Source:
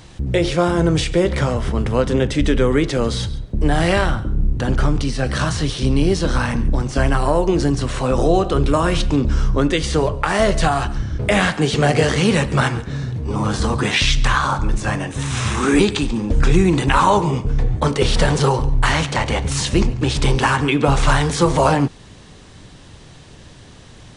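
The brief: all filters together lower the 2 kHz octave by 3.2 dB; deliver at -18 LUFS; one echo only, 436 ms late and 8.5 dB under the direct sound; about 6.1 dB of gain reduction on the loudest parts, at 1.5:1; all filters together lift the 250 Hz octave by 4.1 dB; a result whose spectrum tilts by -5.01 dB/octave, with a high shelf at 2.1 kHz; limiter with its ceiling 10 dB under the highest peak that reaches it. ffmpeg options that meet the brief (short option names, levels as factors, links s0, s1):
-af "equalizer=f=250:t=o:g=5.5,equalizer=f=2000:t=o:g=-8.5,highshelf=f=2100:g=7,acompressor=threshold=0.0562:ratio=1.5,alimiter=limit=0.15:level=0:latency=1,aecho=1:1:436:0.376,volume=2.24"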